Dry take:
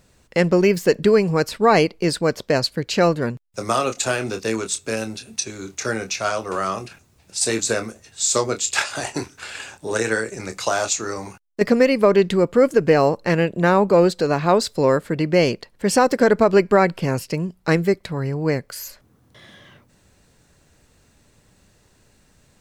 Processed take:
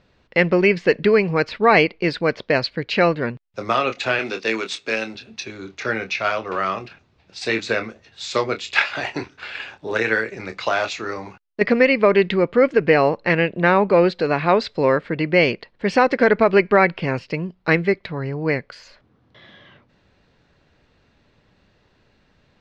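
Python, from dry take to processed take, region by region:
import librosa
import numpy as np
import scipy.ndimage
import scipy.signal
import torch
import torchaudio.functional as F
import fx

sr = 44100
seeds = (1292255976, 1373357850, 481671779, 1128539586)

y = fx.chain(x, sr, fx.median_filter(points=3),
    fx.highpass(hz=200.0, slope=12),
    fx.high_shelf(hz=4500.0, db=11.0), at=(4.19, 5.15))
y = fx.dynamic_eq(y, sr, hz=2200.0, q=1.7, threshold_db=-40.0, ratio=4.0, max_db=8)
y = scipy.signal.sosfilt(scipy.signal.butter(4, 4200.0, 'lowpass', fs=sr, output='sos'), y)
y = fx.low_shelf(y, sr, hz=170.0, db=-4.5)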